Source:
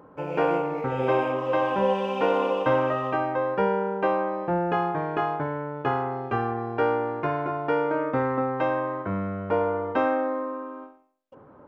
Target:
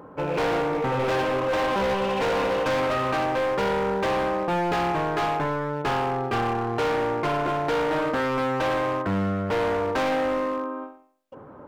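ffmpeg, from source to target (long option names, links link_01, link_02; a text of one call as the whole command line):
ffmpeg -i in.wav -af "asoftclip=type=hard:threshold=-28dB,volume=6dB" out.wav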